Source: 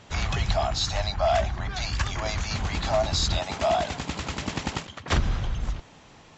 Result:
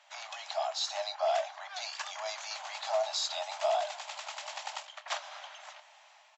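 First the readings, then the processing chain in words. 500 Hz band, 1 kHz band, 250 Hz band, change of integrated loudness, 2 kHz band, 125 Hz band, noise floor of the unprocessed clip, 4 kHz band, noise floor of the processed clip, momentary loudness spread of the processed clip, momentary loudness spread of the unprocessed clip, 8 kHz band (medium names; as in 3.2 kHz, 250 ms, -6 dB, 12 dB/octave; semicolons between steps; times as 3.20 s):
-6.0 dB, -6.0 dB, under -40 dB, -7.5 dB, -8.5 dB, under -40 dB, -51 dBFS, -6.0 dB, -60 dBFS, 13 LU, 8 LU, no reading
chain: dynamic bell 2 kHz, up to -6 dB, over -42 dBFS, Q 1.1; level rider gain up to 4.5 dB; rippled Chebyshev high-pass 590 Hz, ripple 3 dB; doubling 26 ms -14 dB; trim -7.5 dB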